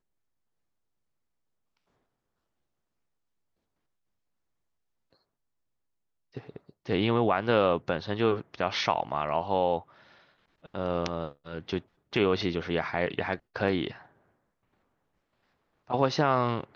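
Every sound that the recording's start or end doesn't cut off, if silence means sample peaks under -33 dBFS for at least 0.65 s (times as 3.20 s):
6.37–9.79 s
10.74–13.91 s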